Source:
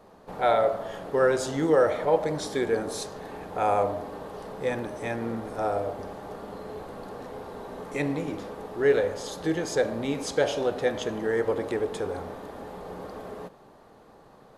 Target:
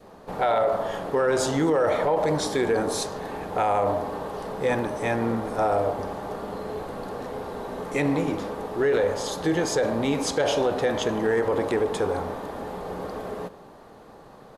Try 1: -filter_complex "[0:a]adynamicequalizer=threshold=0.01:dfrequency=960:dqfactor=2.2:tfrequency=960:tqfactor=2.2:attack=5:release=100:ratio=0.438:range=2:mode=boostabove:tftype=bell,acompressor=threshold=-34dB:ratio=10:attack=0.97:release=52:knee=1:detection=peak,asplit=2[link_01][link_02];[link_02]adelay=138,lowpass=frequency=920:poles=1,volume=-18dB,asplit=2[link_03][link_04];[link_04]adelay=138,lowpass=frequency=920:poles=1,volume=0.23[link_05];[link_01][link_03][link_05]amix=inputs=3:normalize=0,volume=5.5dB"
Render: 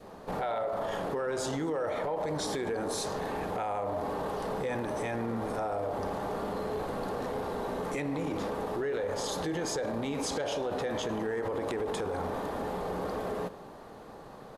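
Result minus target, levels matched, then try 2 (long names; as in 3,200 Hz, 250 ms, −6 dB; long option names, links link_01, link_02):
downward compressor: peak gain reduction +10.5 dB
-filter_complex "[0:a]adynamicequalizer=threshold=0.01:dfrequency=960:dqfactor=2.2:tfrequency=960:tqfactor=2.2:attack=5:release=100:ratio=0.438:range=2:mode=boostabove:tftype=bell,acompressor=threshold=-22.5dB:ratio=10:attack=0.97:release=52:knee=1:detection=peak,asplit=2[link_01][link_02];[link_02]adelay=138,lowpass=frequency=920:poles=1,volume=-18dB,asplit=2[link_03][link_04];[link_04]adelay=138,lowpass=frequency=920:poles=1,volume=0.23[link_05];[link_01][link_03][link_05]amix=inputs=3:normalize=0,volume=5.5dB"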